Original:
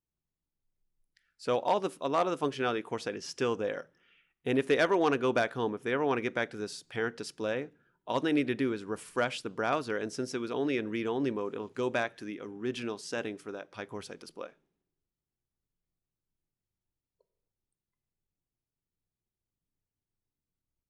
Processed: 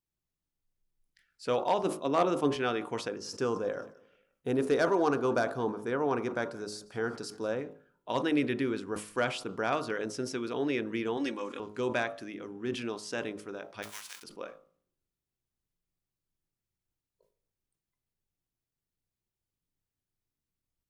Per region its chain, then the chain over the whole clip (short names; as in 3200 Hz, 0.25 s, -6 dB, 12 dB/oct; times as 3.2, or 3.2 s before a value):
1.83–2.56 bell 250 Hz +5.5 dB 1.9 oct + three-band expander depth 40%
3.08–7.61 band shelf 2500 Hz -9 dB 1.2 oct + feedback echo 0.177 s, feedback 40%, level -23 dB
11.17–11.6 LPF 9700 Hz + tilt +3 dB/oct + comb 3.6 ms, depth 68%
13.82–14.22 spectral whitening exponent 0.3 + HPF 1400 Hz
whole clip: de-hum 52.36 Hz, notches 27; sustainer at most 130 dB/s